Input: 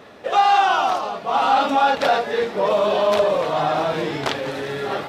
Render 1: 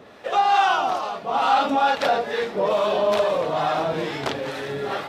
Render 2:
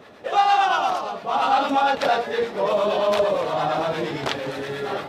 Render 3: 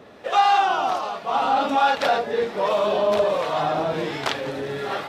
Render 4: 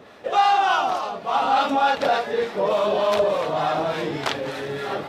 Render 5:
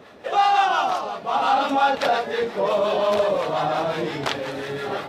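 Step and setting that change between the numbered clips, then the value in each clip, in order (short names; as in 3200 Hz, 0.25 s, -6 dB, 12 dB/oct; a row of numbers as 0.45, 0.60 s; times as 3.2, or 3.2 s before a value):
harmonic tremolo, rate: 2.3, 8.7, 1.3, 3.4, 5.7 Hz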